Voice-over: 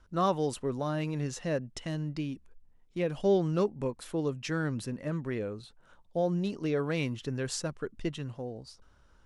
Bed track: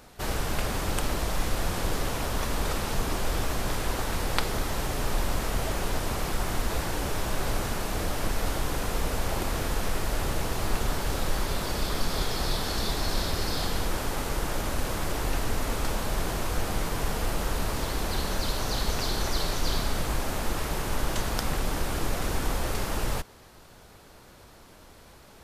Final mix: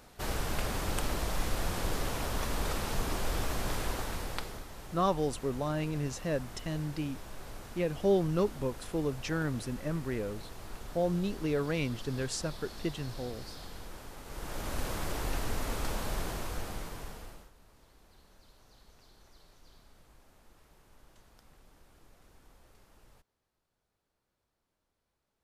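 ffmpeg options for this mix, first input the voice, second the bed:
ffmpeg -i stem1.wav -i stem2.wav -filter_complex "[0:a]adelay=4800,volume=-1dB[link_01];[1:a]volume=7dB,afade=type=out:start_time=3.81:duration=0.85:silence=0.237137,afade=type=in:start_time=14.24:duration=0.56:silence=0.266073,afade=type=out:start_time=16.09:duration=1.42:silence=0.0473151[link_02];[link_01][link_02]amix=inputs=2:normalize=0" out.wav

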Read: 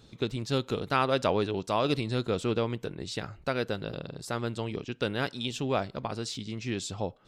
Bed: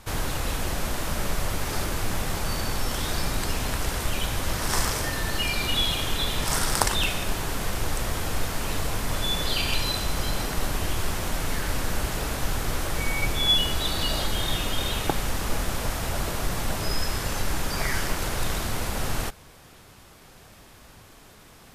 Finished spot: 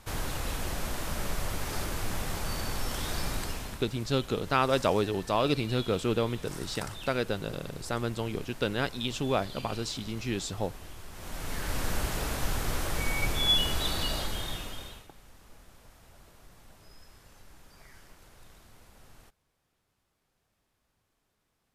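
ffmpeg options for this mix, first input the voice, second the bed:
ffmpeg -i stem1.wav -i stem2.wav -filter_complex "[0:a]adelay=3600,volume=0.5dB[link_01];[1:a]volume=9.5dB,afade=type=out:start_time=3.34:duration=0.51:silence=0.223872,afade=type=in:start_time=11.11:duration=0.75:silence=0.177828,afade=type=out:start_time=13.88:duration=1.19:silence=0.0630957[link_02];[link_01][link_02]amix=inputs=2:normalize=0" out.wav

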